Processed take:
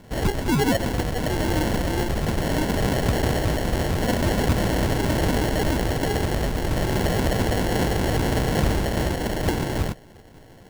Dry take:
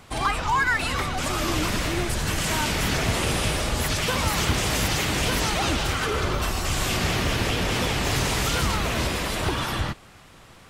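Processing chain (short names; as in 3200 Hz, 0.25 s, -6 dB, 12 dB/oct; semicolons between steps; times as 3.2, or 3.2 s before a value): sample-and-hold 36×; gain +2 dB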